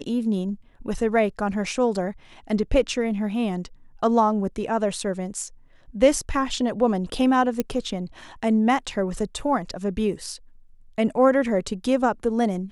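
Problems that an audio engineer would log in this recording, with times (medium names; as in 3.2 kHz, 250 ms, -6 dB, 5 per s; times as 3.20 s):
7.60 s: pop -10 dBFS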